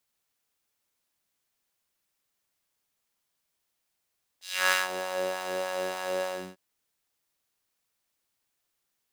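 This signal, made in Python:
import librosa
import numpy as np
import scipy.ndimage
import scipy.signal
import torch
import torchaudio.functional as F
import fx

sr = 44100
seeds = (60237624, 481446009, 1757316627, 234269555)

y = fx.sub_patch_wobble(sr, seeds[0], note=54, wave='saw', wave2='square', interval_st=19, level2_db=-9.0, sub_db=-7.5, noise_db=-27, kind='highpass', cutoff_hz=230.0, q=1.6, env_oct=4.0, env_decay_s=0.56, env_sustain_pct=35, attack_ms=308.0, decay_s=0.16, sustain_db=-14.0, release_s=0.31, note_s=1.84, lfo_hz=3.3, wobble_oct=0.4)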